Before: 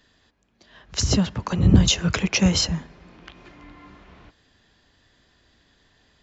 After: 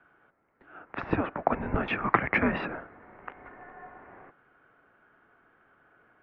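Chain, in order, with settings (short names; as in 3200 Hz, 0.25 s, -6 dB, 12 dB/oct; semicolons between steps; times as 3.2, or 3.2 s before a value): in parallel at -9 dB: backlash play -31.5 dBFS; on the sum: mistuned SSB -310 Hz 520–2200 Hz; gain +4 dB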